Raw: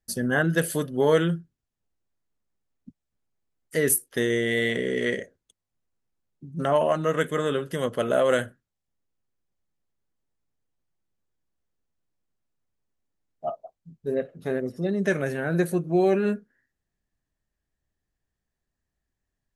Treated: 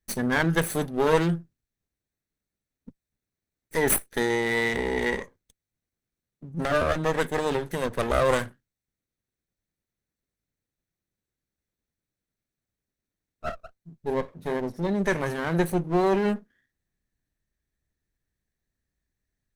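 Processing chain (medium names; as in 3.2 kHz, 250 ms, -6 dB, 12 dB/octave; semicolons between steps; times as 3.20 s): comb filter that takes the minimum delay 0.51 ms; trim +1 dB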